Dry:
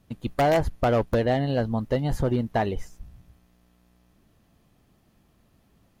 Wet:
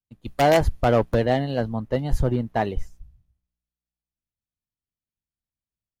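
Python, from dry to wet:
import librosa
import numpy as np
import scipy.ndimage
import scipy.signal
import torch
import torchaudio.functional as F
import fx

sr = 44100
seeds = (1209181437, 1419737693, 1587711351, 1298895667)

y = fx.band_widen(x, sr, depth_pct=100)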